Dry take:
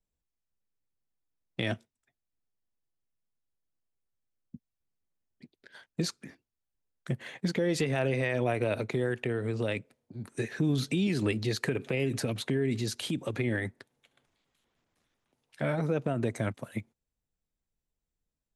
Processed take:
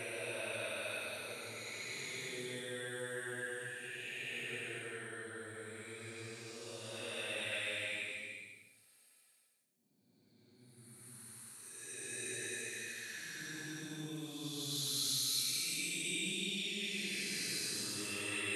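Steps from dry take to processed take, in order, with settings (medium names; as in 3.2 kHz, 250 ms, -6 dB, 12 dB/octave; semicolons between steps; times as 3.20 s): pre-emphasis filter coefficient 0.97; Paulstretch 6.9×, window 0.25 s, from 8.61 s; trim +7 dB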